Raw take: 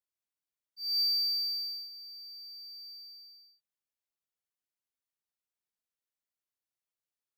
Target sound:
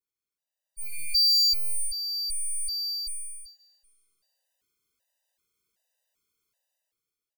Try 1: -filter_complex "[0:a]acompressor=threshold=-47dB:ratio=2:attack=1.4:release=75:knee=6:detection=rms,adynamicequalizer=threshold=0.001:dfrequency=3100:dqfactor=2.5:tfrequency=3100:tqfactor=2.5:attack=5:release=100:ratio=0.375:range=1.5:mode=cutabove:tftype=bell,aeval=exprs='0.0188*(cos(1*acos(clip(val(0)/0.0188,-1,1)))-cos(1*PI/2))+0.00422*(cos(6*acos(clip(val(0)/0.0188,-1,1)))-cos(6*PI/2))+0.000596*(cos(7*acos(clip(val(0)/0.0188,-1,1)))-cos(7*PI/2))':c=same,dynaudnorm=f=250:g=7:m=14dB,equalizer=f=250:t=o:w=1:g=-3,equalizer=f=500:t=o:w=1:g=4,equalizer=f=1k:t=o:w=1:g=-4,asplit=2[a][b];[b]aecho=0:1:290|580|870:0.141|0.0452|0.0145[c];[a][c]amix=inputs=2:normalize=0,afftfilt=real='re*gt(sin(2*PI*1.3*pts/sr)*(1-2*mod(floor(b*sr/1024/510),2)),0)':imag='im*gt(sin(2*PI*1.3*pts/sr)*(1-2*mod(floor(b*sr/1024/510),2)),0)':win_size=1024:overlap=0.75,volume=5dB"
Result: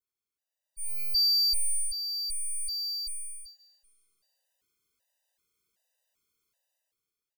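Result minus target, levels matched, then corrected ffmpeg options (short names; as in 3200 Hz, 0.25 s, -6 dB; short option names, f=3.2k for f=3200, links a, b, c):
compressor: peak gain reduction +3.5 dB
-filter_complex "[0:a]acompressor=threshold=-40dB:ratio=2:attack=1.4:release=75:knee=6:detection=rms,adynamicequalizer=threshold=0.001:dfrequency=3100:dqfactor=2.5:tfrequency=3100:tqfactor=2.5:attack=5:release=100:ratio=0.375:range=1.5:mode=cutabove:tftype=bell,aeval=exprs='0.0188*(cos(1*acos(clip(val(0)/0.0188,-1,1)))-cos(1*PI/2))+0.00422*(cos(6*acos(clip(val(0)/0.0188,-1,1)))-cos(6*PI/2))+0.000596*(cos(7*acos(clip(val(0)/0.0188,-1,1)))-cos(7*PI/2))':c=same,dynaudnorm=f=250:g=7:m=14dB,equalizer=f=250:t=o:w=1:g=-3,equalizer=f=500:t=o:w=1:g=4,equalizer=f=1k:t=o:w=1:g=-4,asplit=2[a][b];[b]aecho=0:1:290|580|870:0.141|0.0452|0.0145[c];[a][c]amix=inputs=2:normalize=0,afftfilt=real='re*gt(sin(2*PI*1.3*pts/sr)*(1-2*mod(floor(b*sr/1024/510),2)),0)':imag='im*gt(sin(2*PI*1.3*pts/sr)*(1-2*mod(floor(b*sr/1024/510),2)),0)':win_size=1024:overlap=0.75,volume=5dB"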